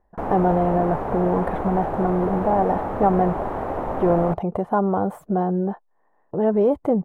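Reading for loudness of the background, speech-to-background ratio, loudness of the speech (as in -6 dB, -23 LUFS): -27.5 LUFS, 5.0 dB, -22.5 LUFS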